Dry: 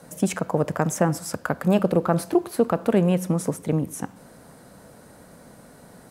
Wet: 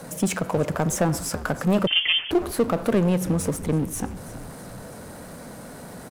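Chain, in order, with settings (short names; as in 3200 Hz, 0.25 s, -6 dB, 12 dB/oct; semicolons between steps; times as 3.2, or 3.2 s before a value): frequency-shifting echo 0.328 s, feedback 56%, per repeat -93 Hz, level -20 dB; power-law curve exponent 0.7; 1.87–2.31 inverted band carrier 3300 Hz; gain -4 dB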